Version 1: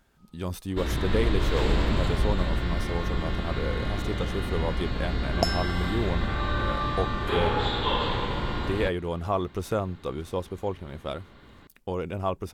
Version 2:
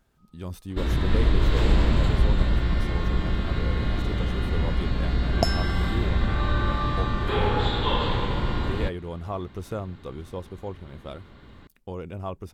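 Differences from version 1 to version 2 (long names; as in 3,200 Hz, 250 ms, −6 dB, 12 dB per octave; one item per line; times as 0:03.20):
speech −6.5 dB
master: add low-shelf EQ 240 Hz +5.5 dB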